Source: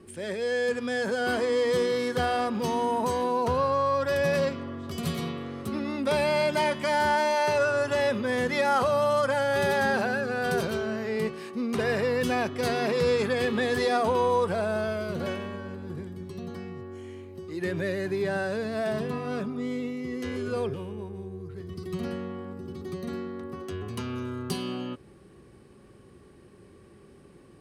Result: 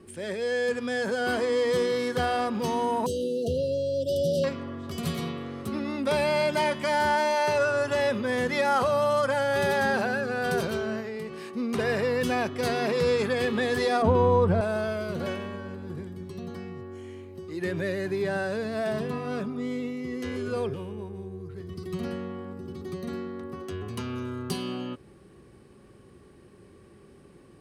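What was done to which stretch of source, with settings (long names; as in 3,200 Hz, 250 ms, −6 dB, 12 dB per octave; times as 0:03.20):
0:03.06–0:04.44: linear-phase brick-wall band-stop 690–2,700 Hz
0:11.00–0:11.41: downward compressor 10 to 1, threshold −31 dBFS
0:14.02–0:14.61: RIAA equalisation playback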